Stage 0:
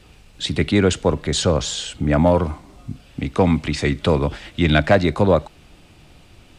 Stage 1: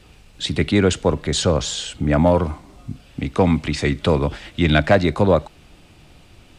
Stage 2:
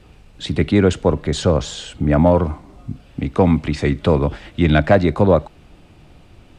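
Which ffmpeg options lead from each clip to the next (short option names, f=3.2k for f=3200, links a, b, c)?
-af anull
-af "highshelf=f=2.1k:g=-9,volume=2.5dB"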